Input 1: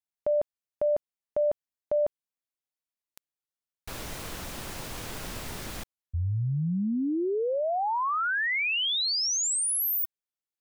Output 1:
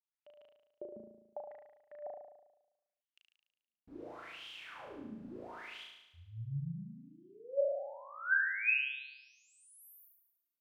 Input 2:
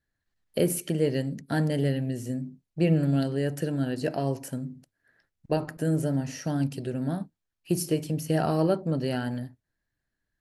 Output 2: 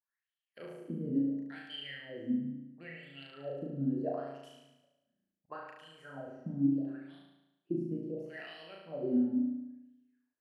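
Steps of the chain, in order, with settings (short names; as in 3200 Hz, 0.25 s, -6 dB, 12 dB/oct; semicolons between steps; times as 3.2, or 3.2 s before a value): low shelf 200 Hz +8 dB; wah 0.73 Hz 210–3200 Hz, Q 12; flutter echo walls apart 6.2 m, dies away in 0.96 s; gain +2 dB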